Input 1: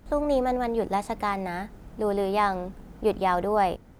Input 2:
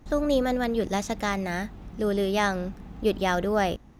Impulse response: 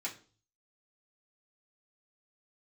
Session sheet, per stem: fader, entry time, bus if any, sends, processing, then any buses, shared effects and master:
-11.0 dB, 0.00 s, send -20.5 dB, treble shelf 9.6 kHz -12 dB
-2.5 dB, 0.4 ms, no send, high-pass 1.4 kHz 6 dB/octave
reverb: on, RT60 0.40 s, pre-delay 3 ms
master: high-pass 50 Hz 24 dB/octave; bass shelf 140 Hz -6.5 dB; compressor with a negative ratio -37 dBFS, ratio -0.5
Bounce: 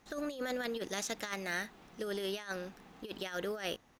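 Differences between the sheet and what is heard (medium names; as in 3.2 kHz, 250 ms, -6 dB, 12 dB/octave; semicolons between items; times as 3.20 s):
stem 1 -11.0 dB -> -17.5 dB; master: missing high-pass 50 Hz 24 dB/octave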